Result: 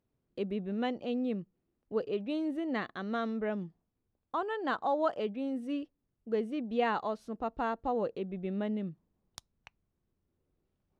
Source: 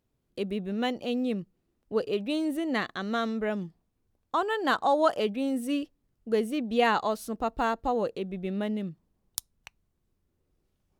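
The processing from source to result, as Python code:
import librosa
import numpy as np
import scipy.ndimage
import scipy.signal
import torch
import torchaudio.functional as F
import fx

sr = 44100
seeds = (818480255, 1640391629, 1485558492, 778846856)

y = fx.low_shelf(x, sr, hz=60.0, db=-7.5)
y = fx.rider(y, sr, range_db=10, speed_s=2.0)
y = fx.spacing_loss(y, sr, db_at_10k=20)
y = y * librosa.db_to_amplitude(-4.0)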